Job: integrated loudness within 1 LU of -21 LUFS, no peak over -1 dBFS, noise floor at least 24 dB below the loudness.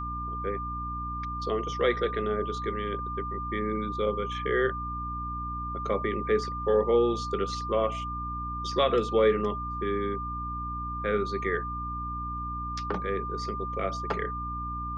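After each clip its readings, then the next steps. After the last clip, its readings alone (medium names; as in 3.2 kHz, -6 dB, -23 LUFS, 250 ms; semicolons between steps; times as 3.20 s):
hum 60 Hz; highest harmonic 300 Hz; hum level -35 dBFS; steady tone 1.2 kHz; tone level -33 dBFS; loudness -29.5 LUFS; peak level -12.5 dBFS; loudness target -21.0 LUFS
-> de-hum 60 Hz, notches 5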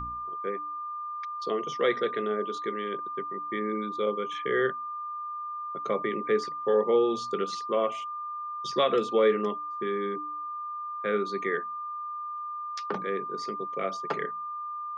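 hum not found; steady tone 1.2 kHz; tone level -33 dBFS
-> band-stop 1.2 kHz, Q 30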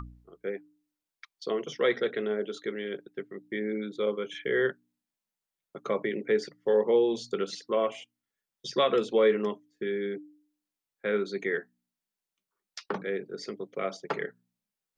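steady tone not found; loudness -30.0 LUFS; peak level -13.0 dBFS; loudness target -21.0 LUFS
-> trim +9 dB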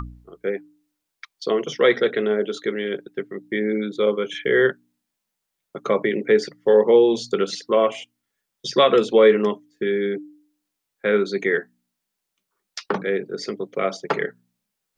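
loudness -21.0 LUFS; peak level -4.0 dBFS; noise floor -81 dBFS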